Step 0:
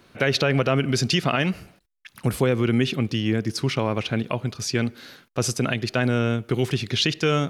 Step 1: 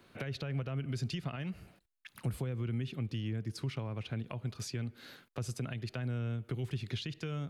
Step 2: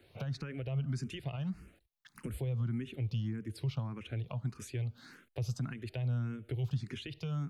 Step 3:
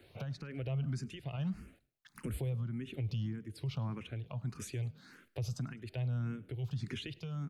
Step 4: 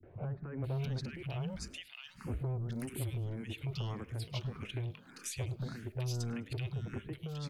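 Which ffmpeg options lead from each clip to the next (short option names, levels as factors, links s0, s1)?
-filter_complex "[0:a]equalizer=f=5700:t=o:w=0.38:g=-5,acrossover=split=140[s0][s1];[s1]acompressor=threshold=0.0224:ratio=10[s2];[s0][s2]amix=inputs=2:normalize=0,volume=0.447"
-filter_complex "[0:a]lowshelf=f=140:g=7.5,asplit=2[s0][s1];[s1]afreqshift=1.7[s2];[s0][s2]amix=inputs=2:normalize=1"
-filter_complex "[0:a]tremolo=f=1.3:d=0.56,asplit=3[s0][s1][s2];[s1]adelay=104,afreqshift=36,volume=0.0631[s3];[s2]adelay=208,afreqshift=72,volume=0.0234[s4];[s0][s3][s4]amix=inputs=3:normalize=0,alimiter=level_in=2.51:limit=0.0631:level=0:latency=1:release=31,volume=0.398,volume=1.33"
-filter_complex "[0:a]acrossover=split=1700[s0][s1];[s0]asoftclip=type=tanh:threshold=0.0119[s2];[s2][s1]amix=inputs=2:normalize=0,acrossover=split=200|1500[s3][s4][s5];[s4]adelay=30[s6];[s5]adelay=640[s7];[s3][s6][s7]amix=inputs=3:normalize=0,volume=2"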